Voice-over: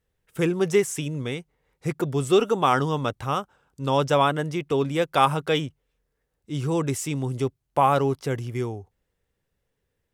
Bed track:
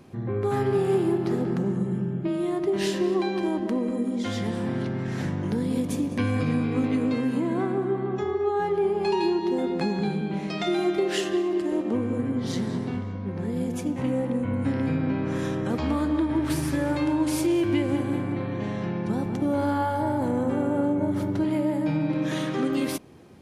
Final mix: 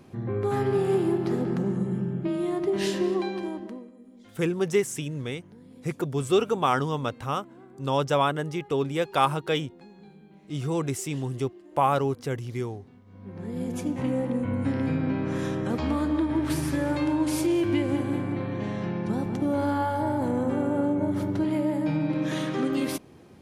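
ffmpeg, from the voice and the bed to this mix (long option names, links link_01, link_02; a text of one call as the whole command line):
ffmpeg -i stem1.wav -i stem2.wav -filter_complex "[0:a]adelay=4000,volume=-3dB[link_01];[1:a]volume=21.5dB,afade=type=out:start_time=3.04:duration=0.87:silence=0.0749894,afade=type=in:start_time=13.05:duration=0.76:silence=0.0749894[link_02];[link_01][link_02]amix=inputs=2:normalize=0" out.wav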